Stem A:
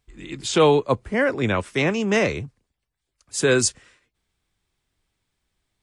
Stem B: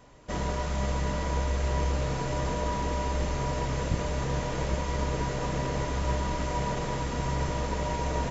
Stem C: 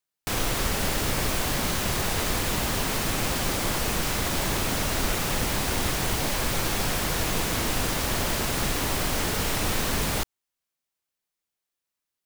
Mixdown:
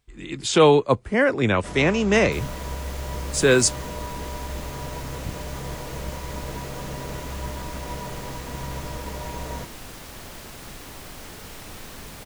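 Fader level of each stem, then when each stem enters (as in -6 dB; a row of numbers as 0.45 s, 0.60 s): +1.5 dB, -4.0 dB, -13.5 dB; 0.00 s, 1.35 s, 2.05 s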